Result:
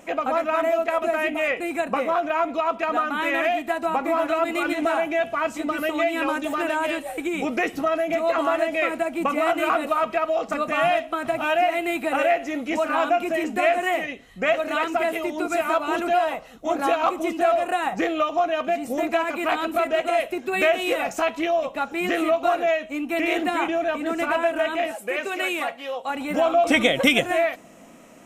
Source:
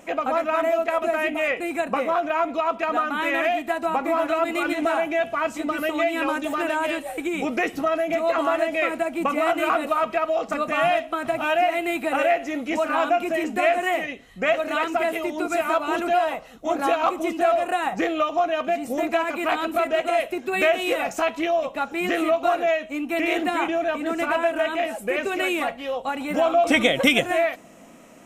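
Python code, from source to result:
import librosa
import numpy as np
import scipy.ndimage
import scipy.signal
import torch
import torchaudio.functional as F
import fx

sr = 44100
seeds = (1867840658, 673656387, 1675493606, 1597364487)

y = fx.highpass(x, sr, hz=490.0, slope=6, at=(24.91, 26.1))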